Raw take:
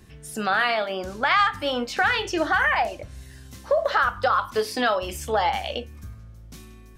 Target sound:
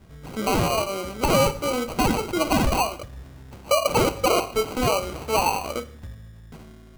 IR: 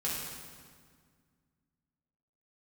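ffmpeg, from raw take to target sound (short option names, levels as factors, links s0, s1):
-filter_complex "[0:a]asuperstop=centerf=2700:order=4:qfactor=4.4,acrusher=samples=25:mix=1:aa=0.000001,asplit=2[s0][s1];[1:a]atrim=start_sample=2205,afade=t=out:st=0.21:d=0.01,atrim=end_sample=9702[s2];[s1][s2]afir=irnorm=-1:irlink=0,volume=0.126[s3];[s0][s3]amix=inputs=2:normalize=0"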